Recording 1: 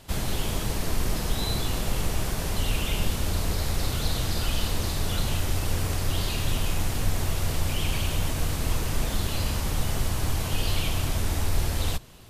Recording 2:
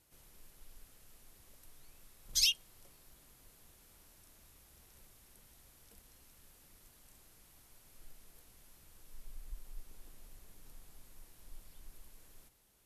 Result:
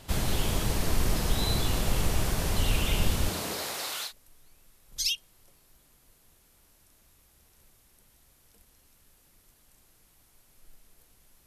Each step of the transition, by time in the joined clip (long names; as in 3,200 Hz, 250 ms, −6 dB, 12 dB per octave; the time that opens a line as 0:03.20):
recording 1
0:03.28–0:04.13: high-pass filter 150 Hz → 1,400 Hz
0:04.08: continue with recording 2 from 0:01.45, crossfade 0.10 s